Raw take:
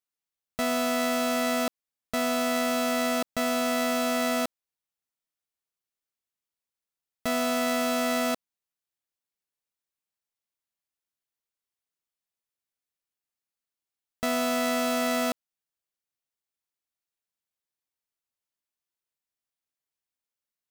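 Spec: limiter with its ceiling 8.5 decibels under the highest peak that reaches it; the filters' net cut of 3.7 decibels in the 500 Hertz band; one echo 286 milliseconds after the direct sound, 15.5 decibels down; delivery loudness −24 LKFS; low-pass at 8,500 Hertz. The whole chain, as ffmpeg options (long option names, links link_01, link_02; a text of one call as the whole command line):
ffmpeg -i in.wav -af "lowpass=8500,equalizer=frequency=500:width_type=o:gain=-5.5,alimiter=level_in=2dB:limit=-24dB:level=0:latency=1,volume=-2dB,aecho=1:1:286:0.168,volume=11.5dB" out.wav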